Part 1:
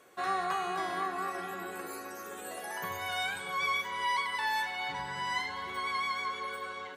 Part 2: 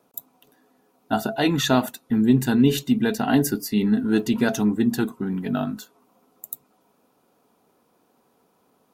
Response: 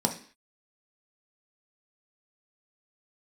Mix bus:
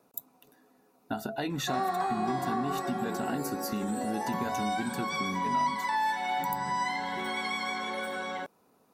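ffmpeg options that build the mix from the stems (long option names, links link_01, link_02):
-filter_complex "[0:a]adelay=1500,volume=1.5dB,asplit=2[link_01][link_02];[link_02]volume=-6dB[link_03];[1:a]bandreject=frequency=3200:width=7.8,acompressor=threshold=-27dB:ratio=3,volume=-2dB,asplit=2[link_04][link_05];[link_05]apad=whole_len=373185[link_06];[link_01][link_06]sidechaincompress=threshold=-44dB:ratio=8:attack=16:release=502[link_07];[2:a]atrim=start_sample=2205[link_08];[link_03][link_08]afir=irnorm=-1:irlink=0[link_09];[link_07][link_04][link_09]amix=inputs=3:normalize=0,acompressor=threshold=-31dB:ratio=2"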